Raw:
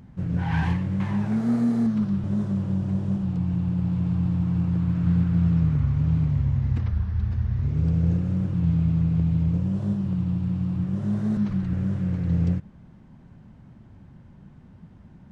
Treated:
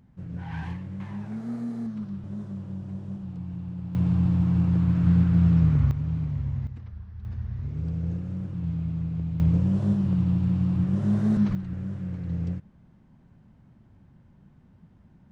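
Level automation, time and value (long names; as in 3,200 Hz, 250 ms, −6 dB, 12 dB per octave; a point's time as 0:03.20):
−10 dB
from 0:03.95 +1.5 dB
from 0:05.91 −6 dB
from 0:06.67 −15 dB
from 0:07.25 −7.5 dB
from 0:09.40 +2 dB
from 0:11.55 −7 dB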